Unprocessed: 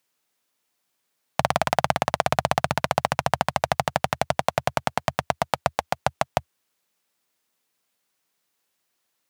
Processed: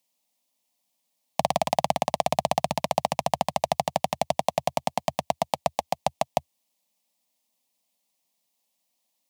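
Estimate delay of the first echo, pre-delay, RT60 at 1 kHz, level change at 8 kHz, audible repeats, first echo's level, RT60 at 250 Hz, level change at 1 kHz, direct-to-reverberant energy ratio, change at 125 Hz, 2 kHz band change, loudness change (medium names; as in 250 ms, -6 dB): no echo, no reverb, no reverb, -0.5 dB, no echo, no echo, no reverb, -1.5 dB, no reverb, -6.0 dB, -9.0 dB, -2.0 dB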